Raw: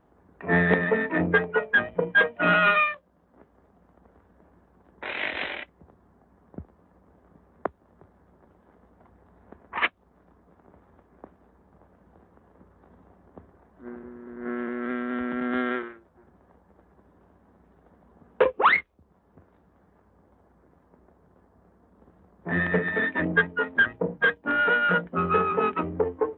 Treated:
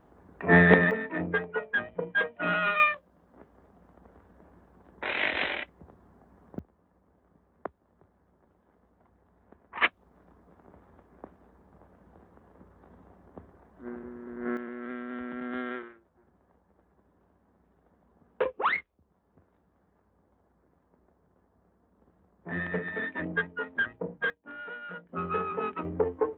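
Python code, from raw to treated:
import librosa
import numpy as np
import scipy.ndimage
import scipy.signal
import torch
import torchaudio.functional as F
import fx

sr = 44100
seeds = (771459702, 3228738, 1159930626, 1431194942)

y = fx.gain(x, sr, db=fx.steps((0.0, 3.0), (0.91, -7.5), (2.8, 1.5), (6.59, -8.0), (9.81, 0.0), (14.57, -8.0), (24.3, -19.0), (25.09, -8.0), (25.85, -2.0)))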